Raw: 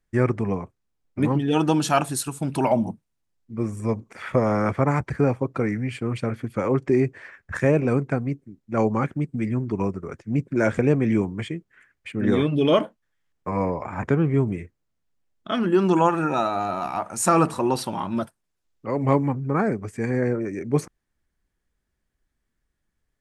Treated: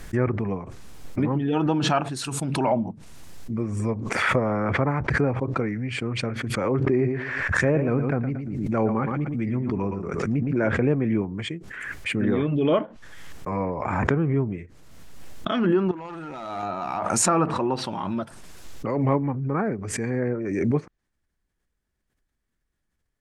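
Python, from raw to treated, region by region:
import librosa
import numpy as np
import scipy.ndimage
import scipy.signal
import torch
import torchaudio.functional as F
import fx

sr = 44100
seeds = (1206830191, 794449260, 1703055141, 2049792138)

y = fx.chain(x, sr, fx.echo_feedback(ms=115, feedback_pct=19, wet_db=-11.0),
    fx.sustainer(db_per_s=55.0), at=(6.75, 10.69))
y = fx.chain(y, sr, fx.level_steps(step_db=16),
    fx.clip_hard(threshold_db=-28.0), at=(15.91, 16.63))
y = fx.env_lowpass_down(y, sr, base_hz=2400.0, full_db=-17.5)
y = fx.pre_swell(y, sr, db_per_s=31.0)
y = y * 10.0 ** (-3.0 / 20.0)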